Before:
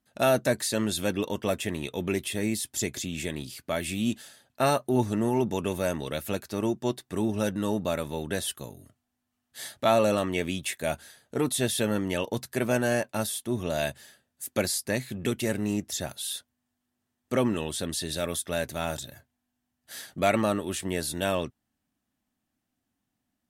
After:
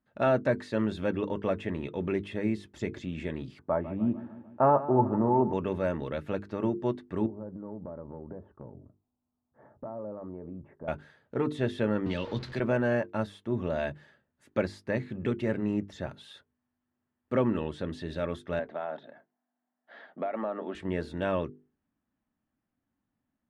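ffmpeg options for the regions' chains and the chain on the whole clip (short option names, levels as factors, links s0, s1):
-filter_complex "[0:a]asettb=1/sr,asplit=3[s0][s1][s2];[s0]atrim=end=3.594[s3];[s1]atrim=start=3.59:end=5.53,asetpts=PTS-STARTPTS,afade=t=in:d=0.004:c=qsin,afade=t=out:st=1.936:d=0.004:c=qsin,lowpass=f=950:t=q:w=2.3,aecho=1:1:149|298|447|596|745|894:0.178|0.101|0.0578|0.0329|0.0188|0.0107,atrim=end_sample=85554[s4];[s2]atrim=start=5.526[s5];[s3][s4]acrossfade=d=0.004:c1=hsin:c2=qsin[s6];[s6][s5]acrossfade=d=0.004:c1=qsin:c2=hsin,asettb=1/sr,asplit=3[s7][s8][s9];[s7]atrim=end=7.264[s10];[s8]atrim=start=7.26:end=10.88,asetpts=PTS-STARTPTS,afade=t=in:d=0.004:c=qsin,afade=t=out:st=3.616:d=0.004:c=qsin,lowpass=f=1000:w=0.5412,lowpass=f=1000:w=1.3066,acompressor=threshold=0.0141:ratio=4:attack=3.2:release=140:knee=1:detection=peak[s11];[s9]atrim=start=10.876[s12];[s10][s11]acrossfade=d=0.004:c1=hsin:c2=qsin[s13];[s13][s12]acrossfade=d=0.004:c1=qsin:c2=hsin,asettb=1/sr,asplit=3[s14][s15][s16];[s14]atrim=end=12.064[s17];[s15]atrim=start=12.06:end=12.6,asetpts=PTS-STARTPTS,afade=t=in:d=0.004:c=qsin,afade=t=out:st=0.536:d=0.004:c=qsin,aeval=exprs='val(0)+0.5*0.0158*sgn(val(0))':c=same,equalizer=f=4200:w=1.4:g=13.5,acrossover=split=240|3000[s18][s19][s20];[s19]acompressor=threshold=0.0224:ratio=2.5:attack=3.2:release=140:knee=2.83:detection=peak[s21];[s18][s21][s20]amix=inputs=3:normalize=0[s22];[s16]atrim=start=12.596[s23];[s17][s22]acrossfade=d=0.004:c1=hsin:c2=qsin[s24];[s24][s23]acrossfade=d=0.004:c1=qsin:c2=hsin,asettb=1/sr,asplit=3[s25][s26][s27];[s25]atrim=end=18.594[s28];[s26]atrim=start=18.59:end=20.75,asetpts=PTS-STARTPTS,afade=t=in:d=0.004:c=qsin,afade=t=out:st=2.156:d=0.004:c=qsin,highpass=f=230:w=0.5412,highpass=f=230:w=1.3066,equalizer=f=330:t=q:w=4:g=-5,equalizer=f=700:t=q:w=4:g=10,equalizer=f=2600:t=q:w=4:g=-6,lowpass=f=3500:w=0.5412,lowpass=f=3500:w=1.3066,acompressor=threshold=0.0398:ratio=4:attack=3.2:release=140:knee=1:detection=peak[s29];[s27]atrim=start=20.746[s30];[s28][s29]acrossfade=d=0.004:c1=hsin:c2=qsin[s31];[s31][s30]acrossfade=d=0.004:c1=qsin:c2=hsin,lowpass=1700,equalizer=f=720:w=6.5:g=-6,bandreject=f=50:t=h:w=6,bandreject=f=100:t=h:w=6,bandreject=f=150:t=h:w=6,bandreject=f=200:t=h:w=6,bandreject=f=250:t=h:w=6,bandreject=f=300:t=h:w=6,bandreject=f=350:t=h:w=6,bandreject=f=400:t=h:w=6,bandreject=f=450:t=h:w=6"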